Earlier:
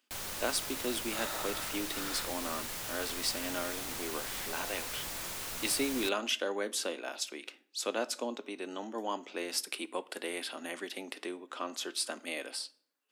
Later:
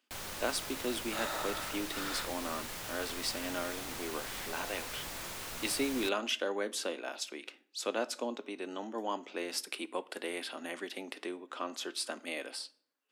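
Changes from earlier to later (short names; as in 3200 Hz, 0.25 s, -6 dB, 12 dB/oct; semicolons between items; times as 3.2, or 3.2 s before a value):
second sound +3.0 dB; master: add high shelf 4900 Hz -5 dB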